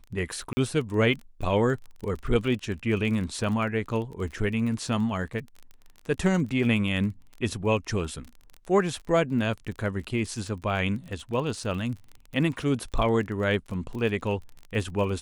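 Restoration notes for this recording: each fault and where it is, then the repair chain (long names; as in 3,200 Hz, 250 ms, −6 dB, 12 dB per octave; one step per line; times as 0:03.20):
surface crackle 28 per second −34 dBFS
0:00.53–0:00.57: drop-out 40 ms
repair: click removal
repair the gap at 0:00.53, 40 ms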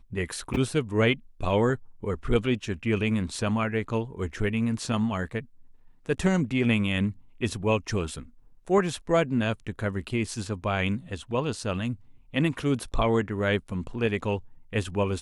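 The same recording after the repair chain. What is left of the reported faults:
none of them is left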